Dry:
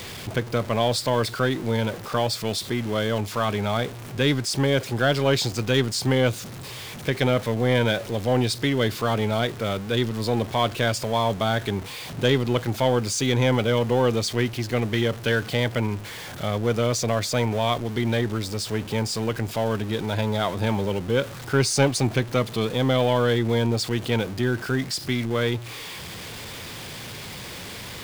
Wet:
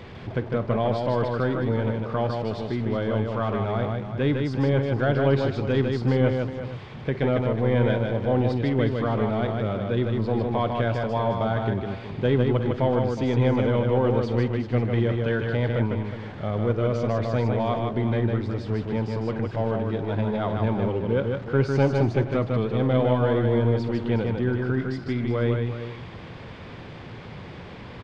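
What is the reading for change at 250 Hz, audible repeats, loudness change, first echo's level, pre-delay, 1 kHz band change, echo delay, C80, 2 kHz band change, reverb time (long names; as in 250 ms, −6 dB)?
+0.5 dB, 4, −0.5 dB, −17.0 dB, no reverb audible, −2.0 dB, 51 ms, no reverb audible, −5.5 dB, no reverb audible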